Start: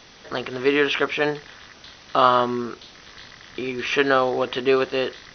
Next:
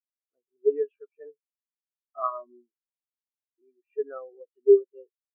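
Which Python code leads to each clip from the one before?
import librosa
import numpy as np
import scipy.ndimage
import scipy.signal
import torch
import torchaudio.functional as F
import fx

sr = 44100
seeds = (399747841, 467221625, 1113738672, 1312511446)

y = fx.spectral_expand(x, sr, expansion=4.0)
y = F.gain(torch.from_numpy(y), -4.5).numpy()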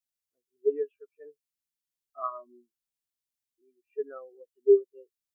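y = fx.peak_eq(x, sr, hz=780.0, db=-11.5, octaves=3.0)
y = F.gain(torch.from_numpy(y), 5.5).numpy()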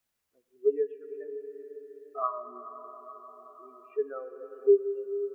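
y = fx.rev_plate(x, sr, seeds[0], rt60_s=4.3, hf_ratio=0.9, predelay_ms=0, drr_db=10.0)
y = fx.band_squash(y, sr, depth_pct=40)
y = F.gain(torch.from_numpy(y), 3.0).numpy()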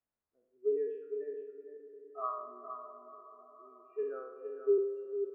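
y = fx.spec_trails(x, sr, decay_s=0.82)
y = fx.env_lowpass(y, sr, base_hz=1200.0, full_db=-20.0)
y = y + 10.0 ** (-8.5 / 20.0) * np.pad(y, (int(463 * sr / 1000.0), 0))[:len(y)]
y = F.gain(torch.from_numpy(y), -8.0).numpy()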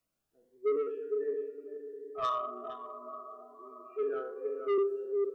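y = fx.room_shoebox(x, sr, seeds[1], volume_m3=530.0, walls='furnished', distance_m=0.58)
y = 10.0 ** (-32.5 / 20.0) * np.tanh(y / 10.0 ** (-32.5 / 20.0))
y = fx.notch_cascade(y, sr, direction='rising', hz=1.3)
y = F.gain(torch.from_numpy(y), 9.0).numpy()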